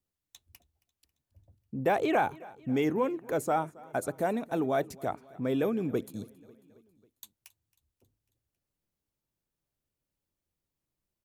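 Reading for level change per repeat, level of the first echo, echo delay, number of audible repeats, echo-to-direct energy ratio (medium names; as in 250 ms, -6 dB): -4.5 dB, -22.5 dB, 272 ms, 3, -20.5 dB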